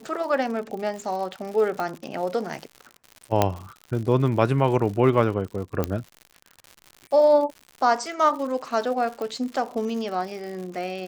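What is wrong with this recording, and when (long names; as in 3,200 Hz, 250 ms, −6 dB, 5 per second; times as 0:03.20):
surface crackle 120 per second −33 dBFS
0:01.80: click −16 dBFS
0:03.42: click −5 dBFS
0:05.84: click −11 dBFS
0:09.22: click −20 dBFS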